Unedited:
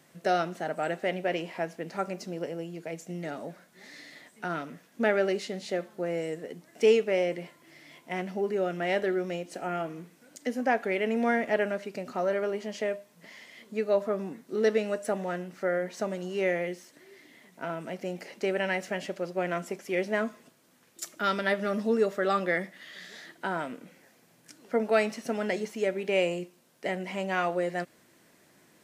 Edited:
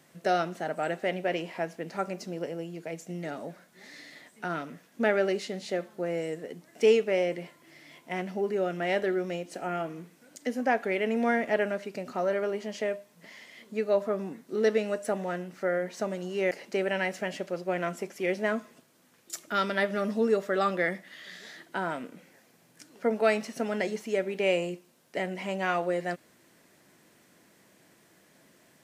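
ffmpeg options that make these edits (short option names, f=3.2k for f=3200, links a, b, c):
-filter_complex "[0:a]asplit=2[a][b];[a]atrim=end=16.512[c];[b]atrim=start=18.198[d];[c][d]acrossfade=d=0.004:c1=hsin:c2=hsin"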